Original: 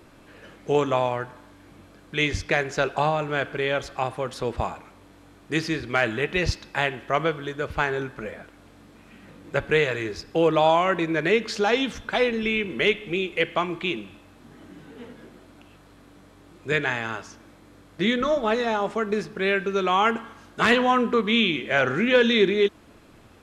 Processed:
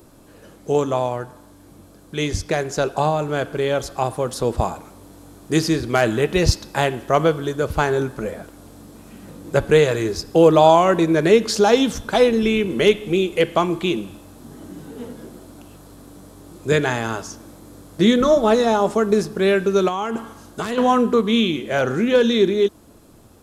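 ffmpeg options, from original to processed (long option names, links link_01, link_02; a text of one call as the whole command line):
ffmpeg -i in.wav -filter_complex "[0:a]asettb=1/sr,asplit=3[link_01][link_02][link_03];[link_01]atrim=end=19.884[link_04];[link_02]atrim=start=19.88:end=20.78,asetpts=PTS-STARTPTS,afade=type=in:duration=0.004:curve=qsin,afade=type=out:start_time=0.896:duration=0.004:curve=qsin,acompressor=threshold=-25dB:ratio=6:attack=3.2:release=140:knee=1:detection=peak[link_05];[link_03]atrim=start=20.776[link_06];[link_04][link_05]acrossfade=duration=0.004:curve1=hsin:curve2=qsin[link_07];[link_07][link_06]acrossfade=duration=0.004:curve1=qsin:curve2=hsin,highshelf=frequency=7300:gain=11,dynaudnorm=framelen=680:gausssize=11:maxgain=11.5dB,equalizer=frequency=2200:width_type=o:width=1.6:gain=-11.5,volume=3.5dB" out.wav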